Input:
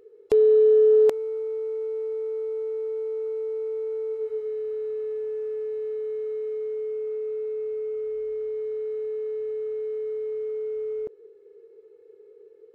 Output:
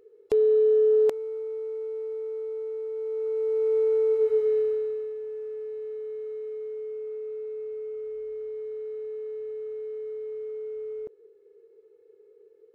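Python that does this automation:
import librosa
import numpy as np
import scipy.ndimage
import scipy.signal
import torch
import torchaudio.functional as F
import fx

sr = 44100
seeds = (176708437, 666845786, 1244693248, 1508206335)

y = fx.gain(x, sr, db=fx.line((2.91, -3.5), (3.77, 7.0), (4.58, 7.0), (5.15, -5.0)))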